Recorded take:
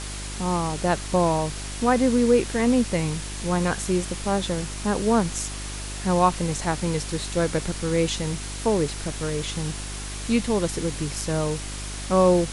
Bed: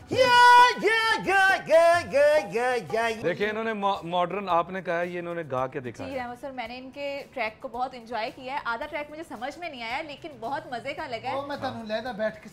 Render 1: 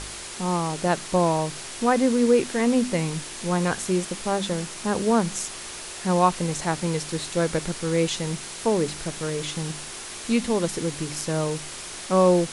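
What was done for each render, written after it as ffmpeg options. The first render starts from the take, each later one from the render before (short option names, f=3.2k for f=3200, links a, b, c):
-af "bandreject=f=50:t=h:w=4,bandreject=f=100:t=h:w=4,bandreject=f=150:t=h:w=4,bandreject=f=200:t=h:w=4,bandreject=f=250:t=h:w=4,bandreject=f=300:t=h:w=4"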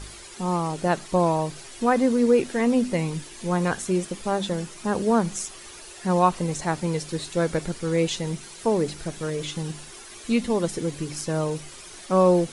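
-af "afftdn=nr=10:nf=-37"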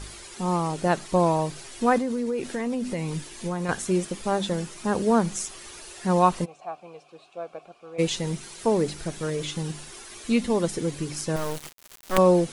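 -filter_complex "[0:a]asettb=1/sr,asplit=3[a][b][c];[a]atrim=end=1.984[d];[b]atrim=start=1.98:end=3.69,asetpts=PTS-STARTPTS,afade=t=in:d=0.004:c=qsin,afade=t=out:st=1.706:d=0.004:c=qsin,acompressor=threshold=-24dB:ratio=6:attack=3.2:release=140:knee=1:detection=peak[e];[c]atrim=start=3.686[f];[d][e]acrossfade=d=0.004:c1=hsin:c2=qsin[g];[g][f]acrossfade=d=0.004:c1=qsin:c2=hsin,asplit=3[h][i][j];[h]afade=t=out:st=6.44:d=0.02[k];[i]asplit=3[l][m][n];[l]bandpass=f=730:t=q:w=8,volume=0dB[o];[m]bandpass=f=1.09k:t=q:w=8,volume=-6dB[p];[n]bandpass=f=2.44k:t=q:w=8,volume=-9dB[q];[o][p][q]amix=inputs=3:normalize=0,afade=t=in:st=6.44:d=0.02,afade=t=out:st=7.98:d=0.02[r];[j]afade=t=in:st=7.98:d=0.02[s];[k][r][s]amix=inputs=3:normalize=0,asettb=1/sr,asplit=3[t][u][v];[t]atrim=end=11.364[w];[u]atrim=start=11.36:end=12.18,asetpts=PTS-STARTPTS,afade=t=in:d=0.004:c=qsin,afade=t=out:st=0.816:d=0.004:c=qsin,acrusher=bits=3:dc=4:mix=0:aa=0.000001[x];[v]atrim=start=12.176[y];[w][x]acrossfade=d=0.004:c1=hsin:c2=qsin[z];[z][y]acrossfade=d=0.004:c1=qsin:c2=hsin"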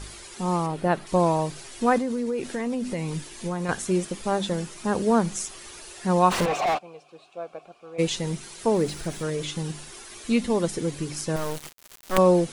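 -filter_complex "[0:a]asettb=1/sr,asplit=3[a][b][c];[a]atrim=end=0.664[d];[b]atrim=start=0.66:end=1.07,asetpts=PTS-STARTPTS,afade=t=in:d=0.004:c=qsin,afade=t=out:st=0.406:d=0.004:c=qsin,equalizer=f=6.7k:w=1:g=-12[e];[c]atrim=start=1.066[f];[d][e]acrossfade=d=0.004:c1=hsin:c2=qsin[g];[g][f]acrossfade=d=0.004:c1=qsin:c2=hsin,asplit=3[h][i][j];[h]afade=t=out:st=6.3:d=0.02[k];[i]asplit=2[l][m];[m]highpass=f=720:p=1,volume=40dB,asoftclip=type=tanh:threshold=-15.5dB[n];[l][n]amix=inputs=2:normalize=0,lowpass=f=2.4k:p=1,volume=-6dB,afade=t=in:st=6.3:d=0.02,afade=t=out:st=6.77:d=0.02[o];[j]afade=t=in:st=6.77:d=0.02[p];[k][o][p]amix=inputs=3:normalize=0,asettb=1/sr,asplit=3[q][r][s];[q]atrim=end=8.744[t];[r]atrim=start=8.74:end=9.23,asetpts=PTS-STARTPTS,afade=t=in:d=0.004:c=qsin,afade=t=out:st=0.486:d=0.004:c=qsin,aeval=exprs='val(0)+0.5*0.00794*sgn(val(0))':c=same[u];[s]atrim=start=9.226[v];[t][u]acrossfade=d=0.004:c1=hsin:c2=qsin[w];[w][v]acrossfade=d=0.004:c1=qsin:c2=hsin"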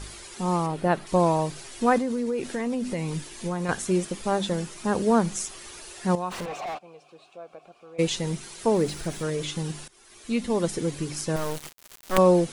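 -filter_complex "[0:a]asettb=1/sr,asplit=3[a][b][c];[a]atrim=end=6.154[d];[b]atrim=start=6.15:end=7.99,asetpts=PTS-STARTPTS,afade=t=in:d=0.004:c=qsin,afade=t=out:st=1.836:d=0.004:c=qsin,acompressor=threshold=-49dB:ratio=1.5:attack=3.2:release=140:knee=1:detection=peak[e];[c]atrim=start=7.986[f];[d][e]acrossfade=d=0.004:c1=hsin:c2=qsin[g];[g][f]acrossfade=d=0.004:c1=qsin:c2=hsin,asplit=2[h][i];[h]atrim=end=9.88,asetpts=PTS-STARTPTS,afade=t=out:st=9.876:d=0.004:c=hsin:silence=0.1[j];[i]atrim=start=9.88,asetpts=PTS-STARTPTS,afade=t=in:d=0.8:silence=0.1[k];[j][k]concat=n=2:v=0:a=1"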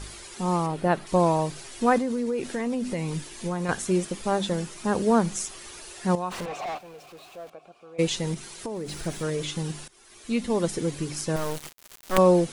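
-filter_complex "[0:a]asettb=1/sr,asplit=3[a][b][c];[a]atrim=end=6.604[d];[b]atrim=start=6.6:end=7.5,asetpts=PTS-STARTPTS,afade=t=in:d=0.004:c=qsin,afade=t=out:st=0.896:d=0.004:c=qsin,aeval=exprs='val(0)+0.5*0.00447*sgn(val(0))':c=same[e];[c]atrim=start=7.496[f];[d][e]acrossfade=d=0.004:c1=hsin:c2=qsin[g];[g][f]acrossfade=d=0.004:c1=qsin:c2=hsin,asettb=1/sr,asplit=3[h][i][j];[h]atrim=end=8.344[k];[i]atrim=start=8.34:end=9.03,asetpts=PTS-STARTPTS,afade=t=in:d=0.004:c=qsin,afade=t=out:st=0.686:d=0.004:c=qsin,acompressor=threshold=-29dB:ratio=12:attack=3.2:release=140:knee=1:detection=peak[l];[j]atrim=start=9.026[m];[k][l]acrossfade=d=0.004:c1=hsin:c2=qsin[n];[n][m]acrossfade=d=0.004:c1=qsin:c2=hsin"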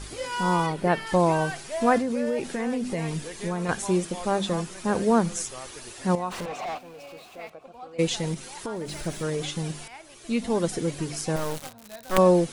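-filter_complex "[1:a]volume=-13.5dB[a];[0:a][a]amix=inputs=2:normalize=0"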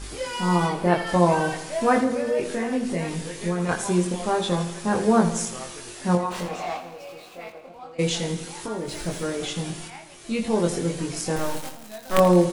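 -filter_complex "[0:a]asplit=2[a][b];[b]adelay=23,volume=-2.5dB[c];[a][c]amix=inputs=2:normalize=0,asplit=2[d][e];[e]aecho=0:1:83|166|249|332|415|498:0.251|0.146|0.0845|0.049|0.0284|0.0165[f];[d][f]amix=inputs=2:normalize=0"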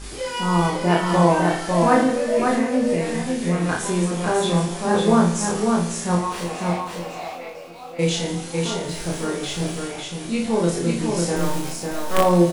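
-filter_complex "[0:a]asplit=2[a][b];[b]adelay=35,volume=-2.5dB[c];[a][c]amix=inputs=2:normalize=0,asplit=2[d][e];[e]aecho=0:1:550:0.668[f];[d][f]amix=inputs=2:normalize=0"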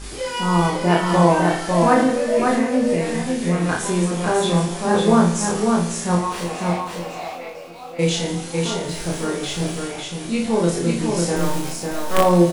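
-af "volume=1.5dB,alimiter=limit=-3dB:level=0:latency=1"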